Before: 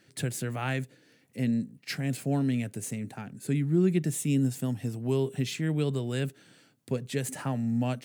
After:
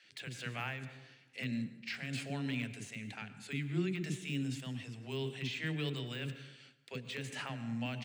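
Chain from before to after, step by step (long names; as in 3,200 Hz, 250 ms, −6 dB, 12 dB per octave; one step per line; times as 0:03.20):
low-pass filter 5,800 Hz 12 dB per octave
parametric band 2,700 Hz +14 dB 1.8 octaves
de-essing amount 100%
high-shelf EQ 3,600 Hz +8.5 dB
multiband delay without the direct sound highs, lows 40 ms, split 400 Hz
dense smooth reverb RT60 1.1 s, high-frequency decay 0.5×, pre-delay 90 ms, DRR 11.5 dB
amplitude modulation by smooth noise, depth 60%
level −7.5 dB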